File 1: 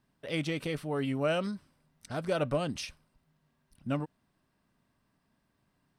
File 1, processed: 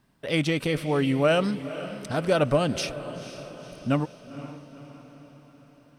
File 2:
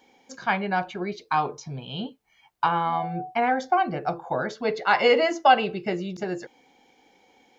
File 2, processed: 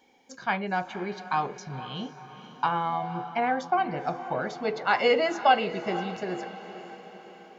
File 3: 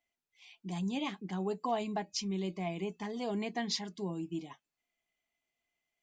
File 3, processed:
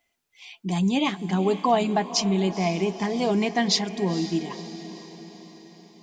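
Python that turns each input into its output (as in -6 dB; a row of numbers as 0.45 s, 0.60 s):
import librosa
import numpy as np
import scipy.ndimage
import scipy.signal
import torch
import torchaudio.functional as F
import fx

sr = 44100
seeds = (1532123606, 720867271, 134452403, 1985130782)

y = fx.echo_diffused(x, sr, ms=494, feedback_pct=53, wet_db=-13.0)
y = librosa.util.normalize(y) * 10.0 ** (-9 / 20.0)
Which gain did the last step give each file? +8.0 dB, -3.5 dB, +12.5 dB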